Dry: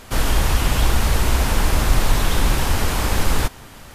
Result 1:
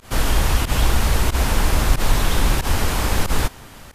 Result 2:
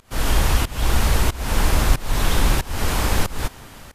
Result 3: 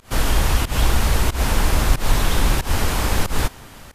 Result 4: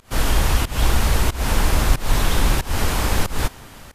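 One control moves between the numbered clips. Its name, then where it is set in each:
volume shaper, release: 78 ms, 390 ms, 154 ms, 242 ms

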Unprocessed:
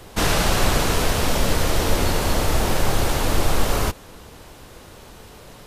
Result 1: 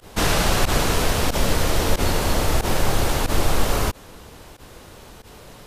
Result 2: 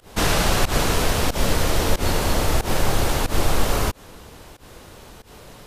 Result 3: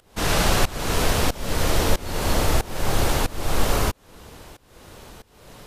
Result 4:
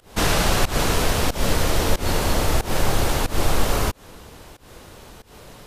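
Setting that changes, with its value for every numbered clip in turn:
volume shaper, release: 66 ms, 127 ms, 507 ms, 186 ms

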